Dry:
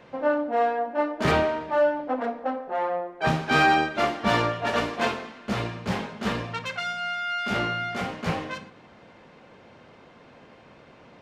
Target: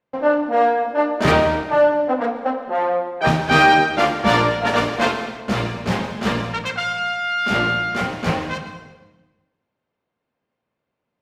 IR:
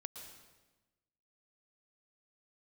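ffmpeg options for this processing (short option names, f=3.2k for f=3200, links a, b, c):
-filter_complex "[0:a]agate=range=-35dB:threshold=-44dB:ratio=16:detection=peak,asplit=2[a][b];[1:a]atrim=start_sample=2205[c];[b][c]afir=irnorm=-1:irlink=0,volume=5.5dB[d];[a][d]amix=inputs=2:normalize=0"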